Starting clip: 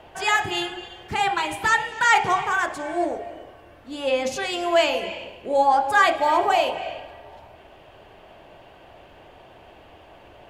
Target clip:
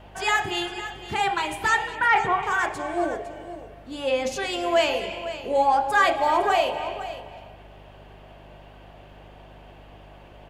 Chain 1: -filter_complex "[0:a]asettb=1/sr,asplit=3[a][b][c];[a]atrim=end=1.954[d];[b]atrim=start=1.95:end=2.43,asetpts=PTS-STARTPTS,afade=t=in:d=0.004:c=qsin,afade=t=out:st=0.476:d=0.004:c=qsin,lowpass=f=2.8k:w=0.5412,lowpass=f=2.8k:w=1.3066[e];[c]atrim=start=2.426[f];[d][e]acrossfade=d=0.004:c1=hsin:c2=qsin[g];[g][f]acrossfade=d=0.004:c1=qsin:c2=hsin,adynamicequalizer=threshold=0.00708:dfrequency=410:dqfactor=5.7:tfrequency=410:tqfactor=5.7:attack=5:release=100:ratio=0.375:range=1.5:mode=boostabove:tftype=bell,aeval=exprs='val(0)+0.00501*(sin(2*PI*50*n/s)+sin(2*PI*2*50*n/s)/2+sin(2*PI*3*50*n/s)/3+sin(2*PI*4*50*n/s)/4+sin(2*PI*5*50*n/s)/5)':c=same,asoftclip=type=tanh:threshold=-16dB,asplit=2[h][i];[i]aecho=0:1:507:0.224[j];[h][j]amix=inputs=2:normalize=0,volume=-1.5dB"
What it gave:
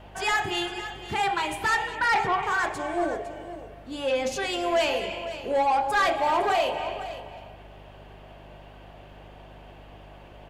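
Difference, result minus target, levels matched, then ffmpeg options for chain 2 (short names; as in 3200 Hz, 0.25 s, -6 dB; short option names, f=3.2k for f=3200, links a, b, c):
soft clip: distortion +16 dB
-filter_complex "[0:a]asettb=1/sr,asplit=3[a][b][c];[a]atrim=end=1.954[d];[b]atrim=start=1.95:end=2.43,asetpts=PTS-STARTPTS,afade=t=in:d=0.004:c=qsin,afade=t=out:st=0.476:d=0.004:c=qsin,lowpass=f=2.8k:w=0.5412,lowpass=f=2.8k:w=1.3066[e];[c]atrim=start=2.426[f];[d][e]acrossfade=d=0.004:c1=hsin:c2=qsin[g];[g][f]acrossfade=d=0.004:c1=qsin:c2=hsin,adynamicequalizer=threshold=0.00708:dfrequency=410:dqfactor=5.7:tfrequency=410:tqfactor=5.7:attack=5:release=100:ratio=0.375:range=1.5:mode=boostabove:tftype=bell,aeval=exprs='val(0)+0.00501*(sin(2*PI*50*n/s)+sin(2*PI*2*50*n/s)/2+sin(2*PI*3*50*n/s)/3+sin(2*PI*4*50*n/s)/4+sin(2*PI*5*50*n/s)/5)':c=same,asoftclip=type=tanh:threshold=-5dB,asplit=2[h][i];[i]aecho=0:1:507:0.224[j];[h][j]amix=inputs=2:normalize=0,volume=-1.5dB"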